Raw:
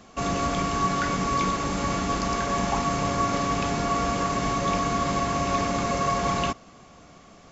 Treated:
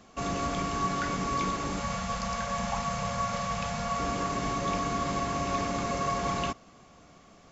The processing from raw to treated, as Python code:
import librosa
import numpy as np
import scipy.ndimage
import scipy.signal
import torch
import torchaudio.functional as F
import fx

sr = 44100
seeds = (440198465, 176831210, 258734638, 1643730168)

y = fx.ellip_bandstop(x, sr, low_hz=230.0, high_hz=480.0, order=3, stop_db=40, at=(1.8, 4.0))
y = F.gain(torch.from_numpy(y), -5.0).numpy()